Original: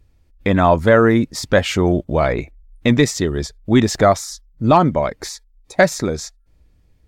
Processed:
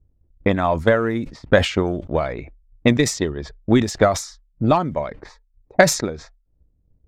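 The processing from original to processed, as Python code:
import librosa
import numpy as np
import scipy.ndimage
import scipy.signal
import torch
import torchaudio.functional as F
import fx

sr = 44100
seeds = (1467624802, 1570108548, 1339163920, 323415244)

y = fx.env_lowpass(x, sr, base_hz=510.0, full_db=-11.0)
y = fx.transient(y, sr, attack_db=11, sustain_db=-2)
y = fx.sustainer(y, sr, db_per_s=120.0)
y = y * 10.0 ** (-9.0 / 20.0)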